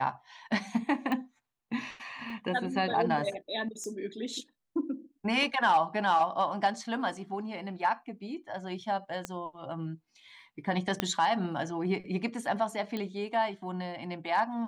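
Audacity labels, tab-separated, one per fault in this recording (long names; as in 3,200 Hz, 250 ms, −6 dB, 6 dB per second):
1.120000	1.120000	click −21 dBFS
2.300000	2.300000	drop-out 2.1 ms
3.840000	3.840000	click −28 dBFS
9.250000	9.250000	click −19 dBFS
11.000000	11.000000	click −12 dBFS
12.970000	12.970000	click −22 dBFS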